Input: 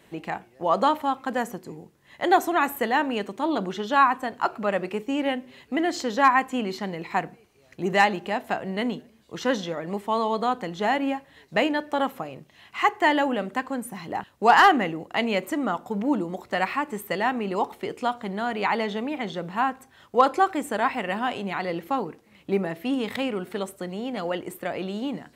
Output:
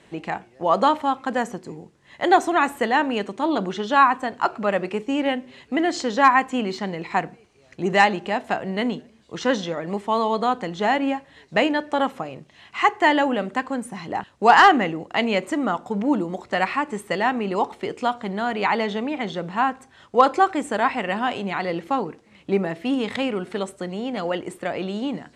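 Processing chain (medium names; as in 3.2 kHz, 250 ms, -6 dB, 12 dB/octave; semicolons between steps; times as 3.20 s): low-pass 9 kHz 24 dB/octave; trim +3 dB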